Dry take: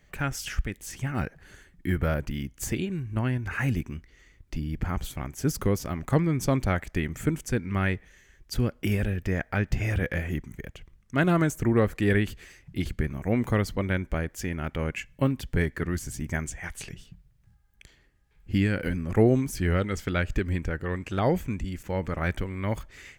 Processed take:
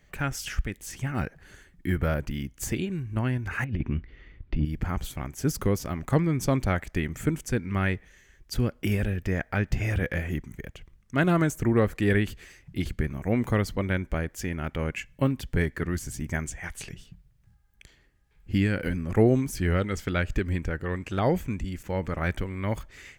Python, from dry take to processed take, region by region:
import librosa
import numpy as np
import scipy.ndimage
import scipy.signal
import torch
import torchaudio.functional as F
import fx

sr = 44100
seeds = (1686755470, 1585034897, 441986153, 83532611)

y = fx.chain(x, sr, fx.lowpass(hz=3600.0, slope=24),
    fx.low_shelf(hz=410.0, db=6.0),
    fx.over_compress(threshold_db=-25.0, ratio=-0.5), at=(3.64, 4.65))